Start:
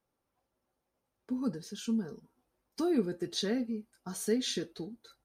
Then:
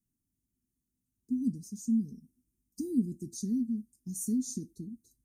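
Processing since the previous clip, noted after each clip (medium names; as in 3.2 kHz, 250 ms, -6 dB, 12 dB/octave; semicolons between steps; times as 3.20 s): elliptic band-stop 260–6700 Hz, stop band 40 dB; trim +3.5 dB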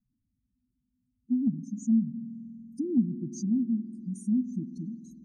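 spectral contrast enhancement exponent 2.4; spring tank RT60 3.1 s, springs 48 ms, DRR 11 dB; low-pass that closes with the level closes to 310 Hz, closed at -26 dBFS; trim +5 dB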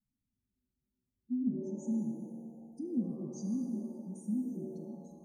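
pitch-shifted reverb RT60 1.6 s, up +7 st, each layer -8 dB, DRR 4.5 dB; trim -9 dB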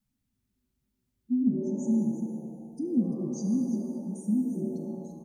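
delay 342 ms -11.5 dB; trim +7.5 dB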